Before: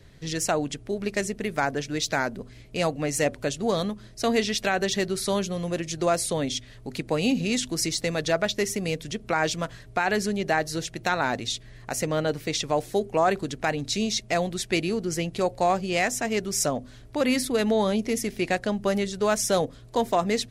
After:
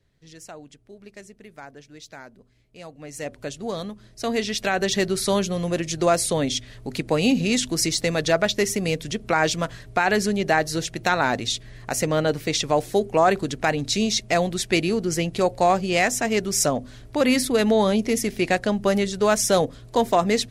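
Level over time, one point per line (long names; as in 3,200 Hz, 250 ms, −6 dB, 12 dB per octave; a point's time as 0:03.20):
0:02.84 −16 dB
0:03.42 −4.5 dB
0:03.92 −4.5 dB
0:05.03 +4 dB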